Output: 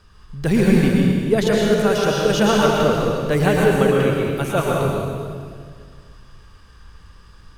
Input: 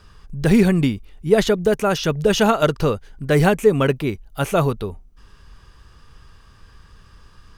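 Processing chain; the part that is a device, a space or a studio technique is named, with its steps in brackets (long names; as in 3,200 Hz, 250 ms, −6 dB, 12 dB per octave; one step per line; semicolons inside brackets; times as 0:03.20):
stairwell (convolution reverb RT60 2.0 s, pre-delay 105 ms, DRR −3 dB)
level −3.5 dB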